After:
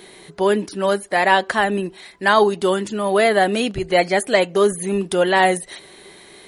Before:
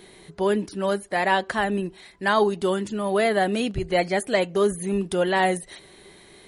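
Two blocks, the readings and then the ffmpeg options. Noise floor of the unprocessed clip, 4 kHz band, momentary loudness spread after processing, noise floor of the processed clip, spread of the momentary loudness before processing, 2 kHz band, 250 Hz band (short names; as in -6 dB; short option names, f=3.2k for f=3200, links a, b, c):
-50 dBFS, +6.5 dB, 7 LU, -45 dBFS, 6 LU, +6.5 dB, +3.0 dB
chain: -af "lowshelf=f=170:g=-10,volume=6.5dB"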